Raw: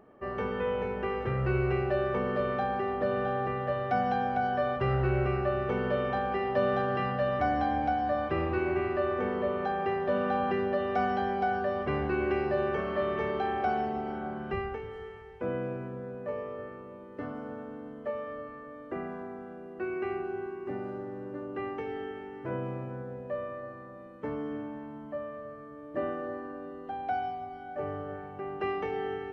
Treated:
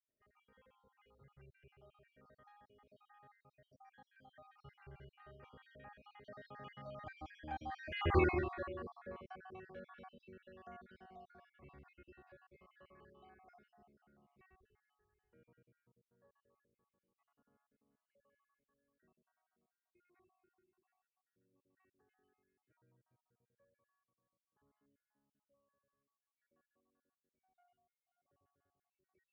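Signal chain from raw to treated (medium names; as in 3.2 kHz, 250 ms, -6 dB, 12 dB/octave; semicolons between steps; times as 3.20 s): random holes in the spectrogram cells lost 56%; Doppler pass-by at 8.18 s, 16 m/s, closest 1.6 m; peaking EQ 430 Hz -9 dB 2.8 oct; trim +8.5 dB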